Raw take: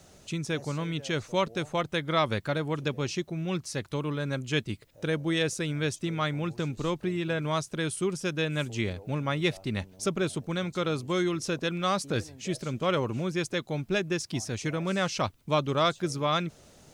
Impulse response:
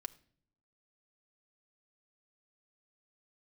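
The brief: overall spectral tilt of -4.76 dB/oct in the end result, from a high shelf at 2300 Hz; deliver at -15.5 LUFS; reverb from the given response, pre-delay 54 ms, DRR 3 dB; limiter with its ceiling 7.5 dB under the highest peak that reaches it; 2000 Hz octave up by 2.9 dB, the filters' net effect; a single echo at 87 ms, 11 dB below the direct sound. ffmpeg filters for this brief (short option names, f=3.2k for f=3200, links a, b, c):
-filter_complex "[0:a]equalizer=f=2k:t=o:g=6,highshelf=f=2.3k:g=-4.5,alimiter=limit=-19dB:level=0:latency=1,aecho=1:1:87:0.282,asplit=2[a][b];[1:a]atrim=start_sample=2205,adelay=54[c];[b][c]afir=irnorm=-1:irlink=0,volume=0.5dB[d];[a][d]amix=inputs=2:normalize=0,volume=13.5dB"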